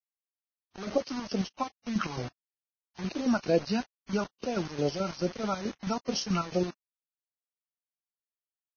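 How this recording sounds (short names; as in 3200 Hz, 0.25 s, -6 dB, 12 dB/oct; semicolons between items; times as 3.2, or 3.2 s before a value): phasing stages 2, 2.3 Hz, lowest notch 470–1300 Hz; chopped level 4.6 Hz, depth 65%, duty 50%; a quantiser's noise floor 8-bit, dither none; Vorbis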